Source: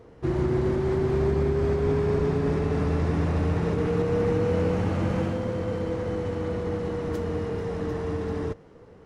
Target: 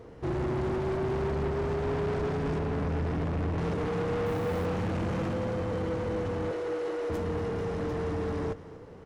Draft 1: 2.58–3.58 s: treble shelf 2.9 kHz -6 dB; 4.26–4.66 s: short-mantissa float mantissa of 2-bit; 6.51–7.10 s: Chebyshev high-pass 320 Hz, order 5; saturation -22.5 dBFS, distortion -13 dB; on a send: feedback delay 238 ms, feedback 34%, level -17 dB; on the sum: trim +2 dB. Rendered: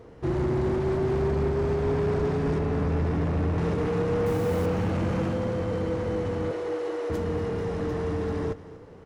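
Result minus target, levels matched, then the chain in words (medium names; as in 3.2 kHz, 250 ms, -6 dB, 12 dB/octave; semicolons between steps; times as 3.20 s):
saturation: distortion -6 dB
2.58–3.58 s: treble shelf 2.9 kHz -6 dB; 4.26–4.66 s: short-mantissa float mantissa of 2-bit; 6.51–7.10 s: Chebyshev high-pass 320 Hz, order 5; saturation -29.5 dBFS, distortion -8 dB; on a send: feedback delay 238 ms, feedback 34%, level -17 dB; on the sum: trim +2 dB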